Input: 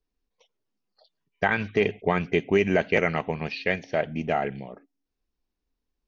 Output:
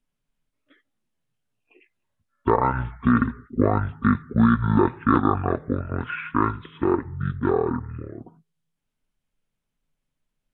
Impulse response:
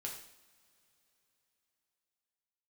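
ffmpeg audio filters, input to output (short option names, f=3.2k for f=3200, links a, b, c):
-af "asetrate=25442,aresample=44100,volume=3dB"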